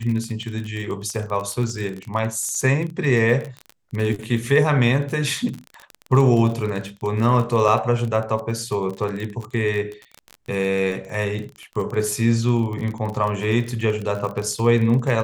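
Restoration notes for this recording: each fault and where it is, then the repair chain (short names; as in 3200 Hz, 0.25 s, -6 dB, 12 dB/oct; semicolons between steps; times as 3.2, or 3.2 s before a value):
crackle 31/s -26 dBFS
7.68–7.69 gap 5.9 ms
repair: de-click; interpolate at 7.68, 5.9 ms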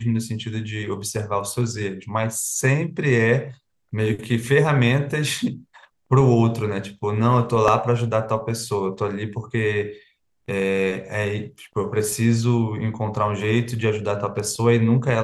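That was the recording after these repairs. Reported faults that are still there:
none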